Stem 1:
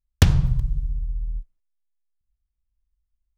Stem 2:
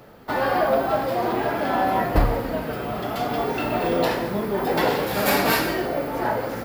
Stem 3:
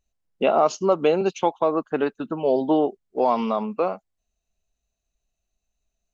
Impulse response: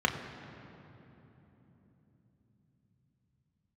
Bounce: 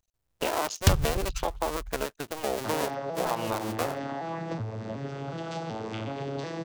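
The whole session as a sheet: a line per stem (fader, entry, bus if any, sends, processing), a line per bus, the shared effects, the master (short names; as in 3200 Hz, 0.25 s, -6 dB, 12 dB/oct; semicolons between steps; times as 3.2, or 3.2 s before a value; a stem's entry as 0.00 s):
-6.0 dB, 0.65 s, no send, reverb removal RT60 1.9 s
-6.0 dB, 2.35 s, no send, arpeggiated vocoder major triad, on A2, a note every 0.371 s; high shelf 3300 Hz +11.5 dB; compressor 6:1, threshold -25 dBFS, peak gain reduction 9.5 dB
-0.5 dB, 0.00 s, no send, cycle switcher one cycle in 2, muted; bell 230 Hz -6 dB 1.2 oct; compressor 2:1, threshold -29 dBFS, peak gain reduction 7.5 dB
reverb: off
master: high shelf 3800 Hz +8 dB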